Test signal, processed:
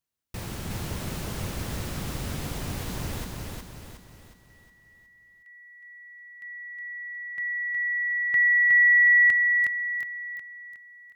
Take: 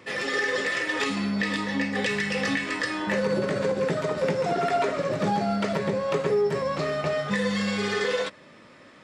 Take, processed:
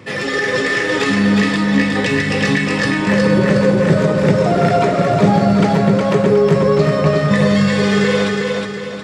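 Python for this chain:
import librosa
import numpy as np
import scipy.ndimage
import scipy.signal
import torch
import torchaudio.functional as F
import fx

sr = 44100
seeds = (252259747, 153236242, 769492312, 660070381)

y = fx.peak_eq(x, sr, hz=110.0, db=11.0, octaves=2.4)
y = fx.echo_feedback(y, sr, ms=364, feedback_pct=45, wet_db=-3)
y = F.gain(torch.from_numpy(y), 6.5).numpy()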